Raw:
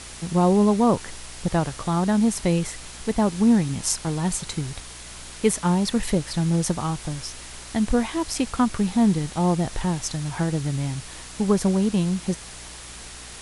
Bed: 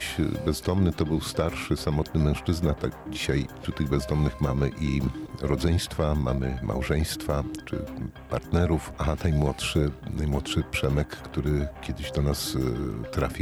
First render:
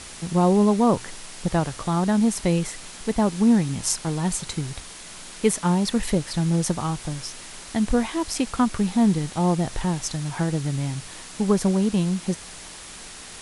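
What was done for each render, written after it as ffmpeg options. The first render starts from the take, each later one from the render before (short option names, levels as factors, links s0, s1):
-af "bandreject=f=60:t=h:w=4,bandreject=f=120:t=h:w=4"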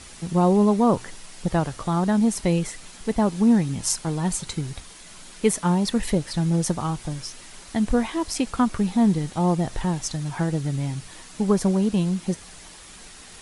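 -af "afftdn=nr=6:nf=-41"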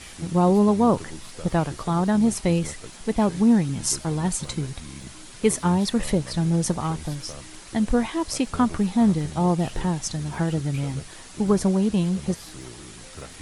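-filter_complex "[1:a]volume=0.188[s0];[0:a][s0]amix=inputs=2:normalize=0"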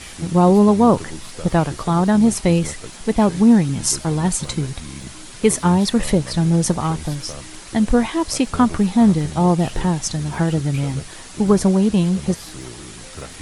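-af "volume=1.88,alimiter=limit=0.794:level=0:latency=1"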